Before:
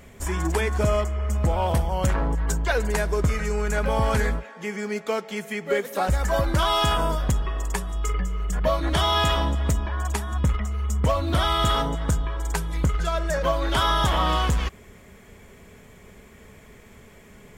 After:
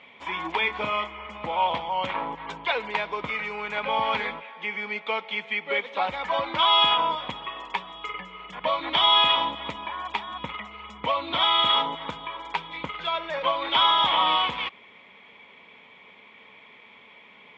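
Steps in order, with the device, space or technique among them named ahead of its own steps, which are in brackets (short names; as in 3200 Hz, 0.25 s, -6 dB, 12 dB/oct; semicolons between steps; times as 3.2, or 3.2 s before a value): 0.61–1.27 doubler 28 ms -7.5 dB; phone earpiece (speaker cabinet 390–3500 Hz, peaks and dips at 390 Hz -9 dB, 630 Hz -5 dB, 950 Hz +7 dB, 1600 Hz -8 dB, 2300 Hz +9 dB, 3400 Hz +10 dB)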